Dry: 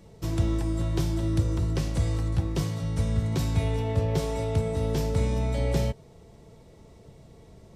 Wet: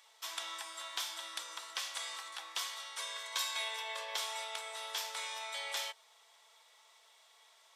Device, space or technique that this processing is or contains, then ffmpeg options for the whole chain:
headphones lying on a table: -filter_complex "[0:a]asettb=1/sr,asplit=3[a][b][c];[a]atrim=end=2.984[d];[b]atrim=start=2.98:end=4.16,asetpts=PTS-STARTPTS,afade=t=in:d=0.004:c=qsin,afade=t=out:st=1.176:d=0.004:c=qsin,aecho=1:1:1.9:0.72,atrim=end_sample=52038[e];[c]atrim=start=4.156[f];[d][e]acrossfade=d=0.004:c1=hsin:c2=qsin[g];[g][f]acrossfade=d=0.004:c1=qsin:c2=hsin,highpass=f=1k:w=0.5412,highpass=f=1k:w=1.3066,equalizer=f=3.4k:t=o:w=0.23:g=8,volume=1dB"

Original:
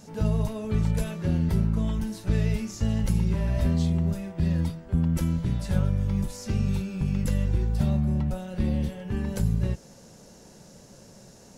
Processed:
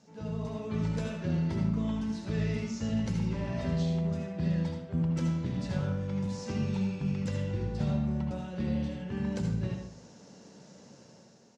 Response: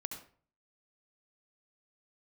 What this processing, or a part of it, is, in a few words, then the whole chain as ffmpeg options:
far laptop microphone: -filter_complex "[0:a]lowpass=f=6.5k:w=0.5412,lowpass=f=6.5k:w=1.3066,asettb=1/sr,asplit=3[a][b][c];[a]atrim=end=6.274[d];[b]atrim=start=6.27:end=6.88,asetpts=PTS-STARTPTS,afade=t=in:d=0.004:c=qsin,afade=t=out:st=0.606:d=0.004:c=qsin,equalizer=f=950:t=o:w=0.77:g=5.5[e];[c]atrim=start=6.876[f];[d][e]acrossfade=d=0.004:c1=hsin:c2=qsin[g];[g][f]acrossfade=d=0.004:c1=qsin:c2=hsin[h];[1:a]atrim=start_sample=2205[i];[h][i]afir=irnorm=-1:irlink=0,highpass=130,dynaudnorm=f=120:g=9:m=7dB,aecho=1:1:79:0.251,volume=-8.5dB"

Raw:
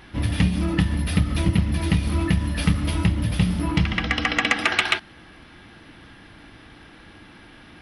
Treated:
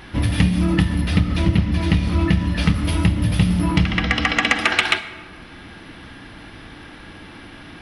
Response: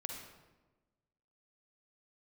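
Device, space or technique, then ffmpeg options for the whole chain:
ducked reverb: -filter_complex "[0:a]asettb=1/sr,asplit=3[a][b][c];[a]atrim=end=1.014[d];[b]atrim=start=1.01:end=2.74,asetpts=PTS-STARTPTS,afade=t=in:d=0.004:c=qsin,afade=t=out:st=1.726:d=0.004:c=qsin,lowpass=6.9k[e];[c]atrim=start=2.736[f];[d][e]acrossfade=d=0.004:c1=hsin:c2=qsin[g];[g][f]acrossfade=d=0.004:c1=qsin:c2=hsin,asplit=3[h][i][j];[1:a]atrim=start_sample=2205[k];[i][k]afir=irnorm=-1:irlink=0[l];[j]apad=whole_len=344739[m];[l][m]sidechaincompress=threshold=-24dB:ratio=8:attack=33:release=878,volume=3.5dB[n];[h][n]amix=inputs=2:normalize=0"

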